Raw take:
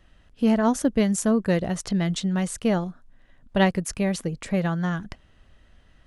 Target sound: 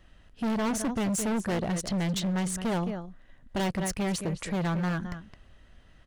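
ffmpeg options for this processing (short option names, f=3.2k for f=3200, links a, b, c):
-filter_complex "[0:a]asplit=2[a][b];[b]adelay=215.7,volume=-13dB,highshelf=f=4k:g=-4.85[c];[a][c]amix=inputs=2:normalize=0,asoftclip=type=hard:threshold=-26dB"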